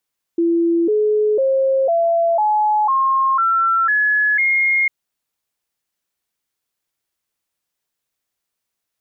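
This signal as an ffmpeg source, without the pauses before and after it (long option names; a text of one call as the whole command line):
ffmpeg -f lavfi -i "aevalsrc='0.224*clip(min(mod(t,0.5),0.5-mod(t,0.5))/0.005,0,1)*sin(2*PI*337*pow(2,floor(t/0.5)/3)*mod(t,0.5))':duration=4.5:sample_rate=44100" out.wav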